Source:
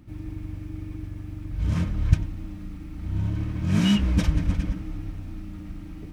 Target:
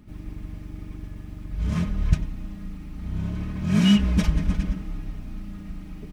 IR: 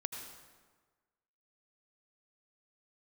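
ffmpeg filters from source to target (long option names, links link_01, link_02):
-af "aecho=1:1:4.8:0.54"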